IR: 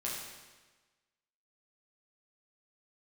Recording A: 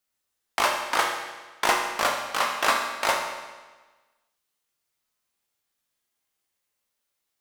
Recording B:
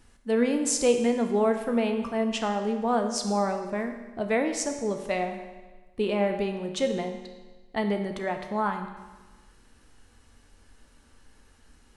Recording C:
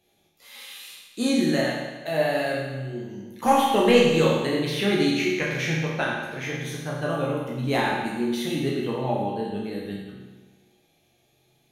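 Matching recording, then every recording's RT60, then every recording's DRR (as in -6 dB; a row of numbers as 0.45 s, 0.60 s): C; 1.3 s, 1.3 s, 1.3 s; 1.0 dB, 5.0 dB, -5.5 dB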